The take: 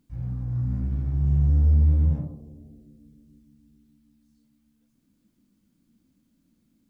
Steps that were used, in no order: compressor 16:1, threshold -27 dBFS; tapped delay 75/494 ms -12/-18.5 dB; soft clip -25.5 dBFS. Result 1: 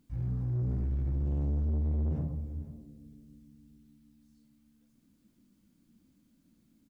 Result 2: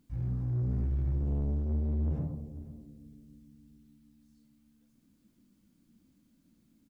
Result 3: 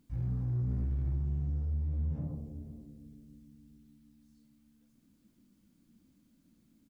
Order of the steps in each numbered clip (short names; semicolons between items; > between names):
tapped delay > soft clip > compressor; soft clip > compressor > tapped delay; compressor > tapped delay > soft clip